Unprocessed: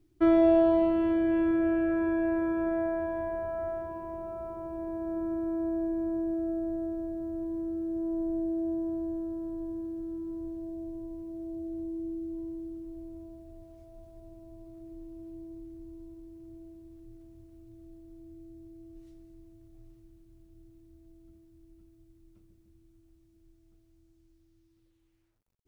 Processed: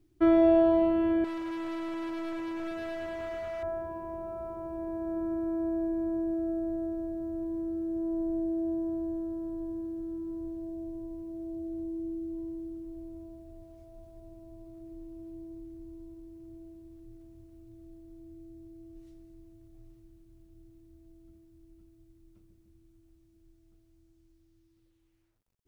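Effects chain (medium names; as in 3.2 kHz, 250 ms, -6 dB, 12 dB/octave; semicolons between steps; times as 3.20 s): 1.24–3.63 s: hard clipper -34.5 dBFS, distortion -9 dB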